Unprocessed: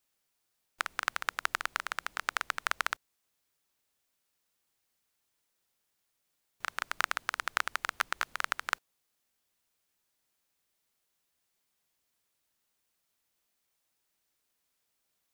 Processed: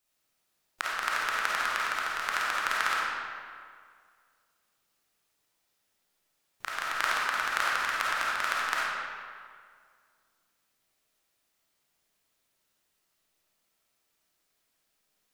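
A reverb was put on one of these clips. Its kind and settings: algorithmic reverb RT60 2 s, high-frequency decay 0.7×, pre-delay 10 ms, DRR -6 dB; trim -1.5 dB

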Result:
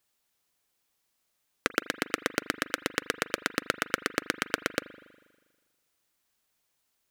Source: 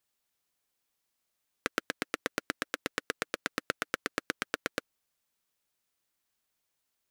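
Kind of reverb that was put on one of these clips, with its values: spring tank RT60 1.4 s, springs 40 ms, chirp 50 ms, DRR 16 dB; trim +4.5 dB

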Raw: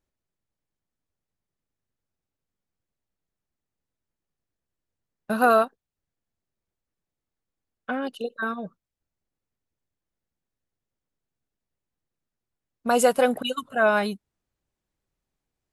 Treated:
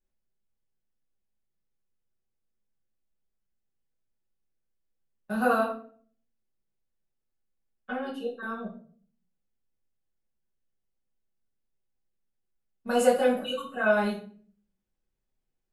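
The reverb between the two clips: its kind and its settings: simulated room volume 45 m³, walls mixed, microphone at 1.4 m; trim -13 dB

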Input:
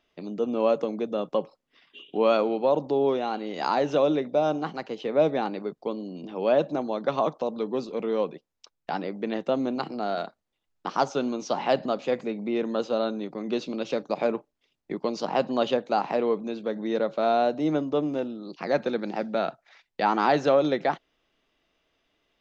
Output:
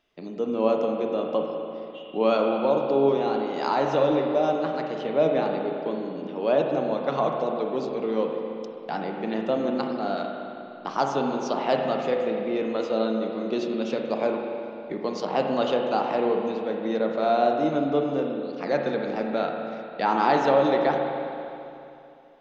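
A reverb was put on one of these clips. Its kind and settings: spring tank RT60 2.8 s, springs 36/50 ms, chirp 60 ms, DRR 1.5 dB; trim -1 dB

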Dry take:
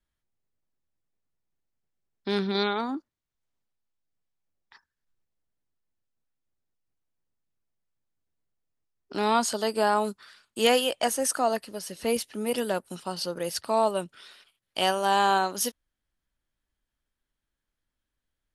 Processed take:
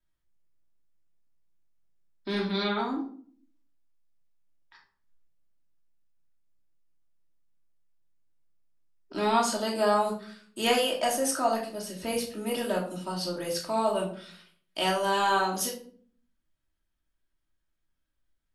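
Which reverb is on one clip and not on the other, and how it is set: simulated room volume 520 m³, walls furnished, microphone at 2.8 m; trim -5 dB

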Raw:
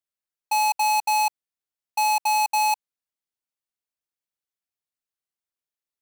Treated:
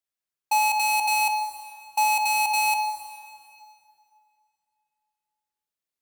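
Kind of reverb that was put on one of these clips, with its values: plate-style reverb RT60 2.5 s, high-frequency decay 0.85×, DRR 7 dB

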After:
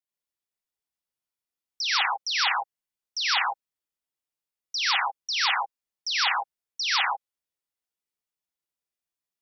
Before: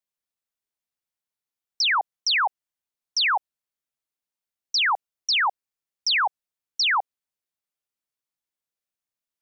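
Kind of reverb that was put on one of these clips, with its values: gated-style reverb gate 170 ms rising, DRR -4 dB; trim -7.5 dB

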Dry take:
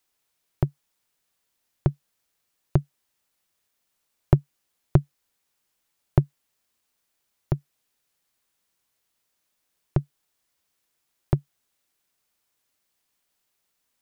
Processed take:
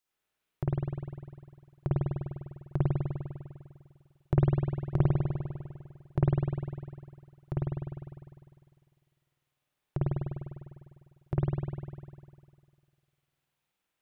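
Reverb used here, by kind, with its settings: spring tank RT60 2 s, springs 50 ms, chirp 80 ms, DRR -8.5 dB; trim -11.5 dB

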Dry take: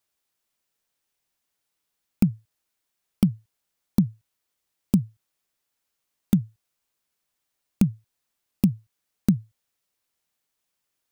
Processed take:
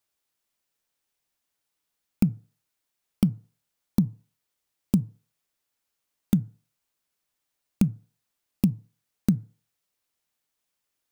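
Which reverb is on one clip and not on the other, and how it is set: FDN reverb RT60 0.45 s, low-frequency decay 0.8×, high-frequency decay 0.4×, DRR 18.5 dB; trim -1.5 dB

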